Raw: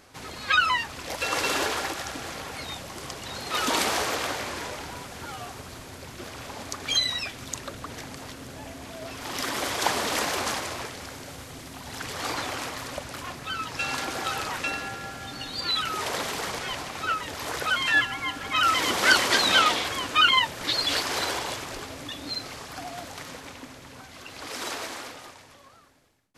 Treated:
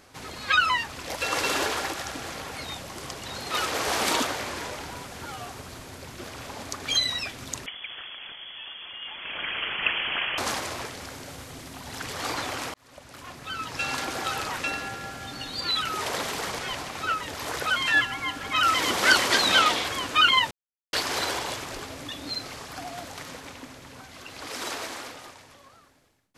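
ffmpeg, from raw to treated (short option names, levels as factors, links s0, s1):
-filter_complex "[0:a]asettb=1/sr,asplit=3[s0][s1][s2];[s0]atrim=end=7.664[s3];[s1]atrim=start=7.66:end=10.38,asetpts=PTS-STARTPTS,afade=t=in:d=0.004:c=qsin,afade=t=out:st=2.716:d=0.004:c=qsin,lowpass=f=3000:t=q:w=0.5098,lowpass=f=3000:t=q:w=0.6013,lowpass=f=3000:t=q:w=0.9,lowpass=f=3000:t=q:w=2.563,afreqshift=-3500[s4];[s2]atrim=start=10.376[s5];[s3][s4]acrossfade=d=0.004:c1=hsin:c2=qsin[s6];[s6][s5]acrossfade=d=0.004:c1=qsin:c2=hsin,asplit=6[s7][s8][s9][s10][s11][s12];[s7]atrim=end=3.662[s13];[s8]atrim=start=3.658:end=4.242,asetpts=PTS-STARTPTS,areverse[s14];[s9]atrim=start=4.238:end=12.74,asetpts=PTS-STARTPTS,afade=t=out:st=8.498:d=0.004:c=hsin[s15];[s10]atrim=start=12.74:end=20.51,asetpts=PTS-STARTPTS,afade=t=in:d=1.01,afade=t=out:st=7.766:d=0.004:c=hsin[s16];[s11]atrim=start=20.51:end=20.93,asetpts=PTS-STARTPTS,volume=0[s17];[s12]atrim=start=20.93,asetpts=PTS-STARTPTS,afade=t=in:d=0.004:c=hsin[s18];[s13][s14]acrossfade=d=0.004:c1=hsin:c2=hsin[s19];[s15][s16][s17][s18]concat=n=4:v=0:a=1[s20];[s19][s20]acrossfade=d=0.004:c1=hsin:c2=hsin"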